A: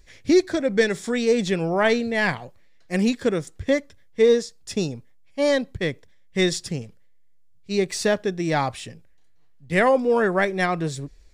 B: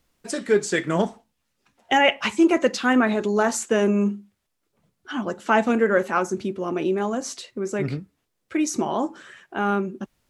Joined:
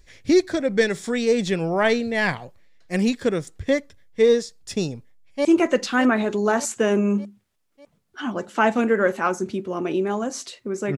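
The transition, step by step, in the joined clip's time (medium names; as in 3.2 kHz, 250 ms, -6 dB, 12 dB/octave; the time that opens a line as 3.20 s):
A
4.96–5.45 s: echo throw 600 ms, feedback 55%, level -11 dB
5.45 s: go over to B from 2.36 s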